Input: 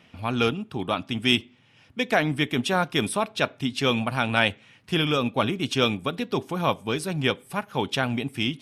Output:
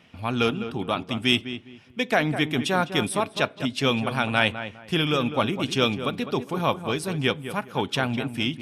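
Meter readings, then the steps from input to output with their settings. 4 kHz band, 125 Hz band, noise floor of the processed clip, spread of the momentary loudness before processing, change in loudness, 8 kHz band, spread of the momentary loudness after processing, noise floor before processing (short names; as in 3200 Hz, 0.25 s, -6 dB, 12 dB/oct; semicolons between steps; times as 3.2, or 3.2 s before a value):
0.0 dB, +0.5 dB, -49 dBFS, 6 LU, 0.0 dB, 0.0 dB, 7 LU, -57 dBFS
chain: darkening echo 0.204 s, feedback 26%, low-pass 1900 Hz, level -10 dB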